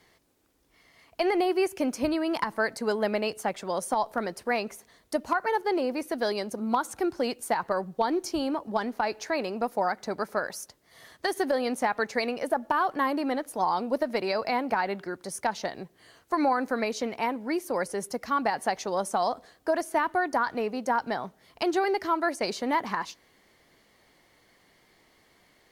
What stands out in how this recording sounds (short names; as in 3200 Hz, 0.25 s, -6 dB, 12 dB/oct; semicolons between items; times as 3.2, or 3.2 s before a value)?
a quantiser's noise floor 12-bit, dither triangular; Vorbis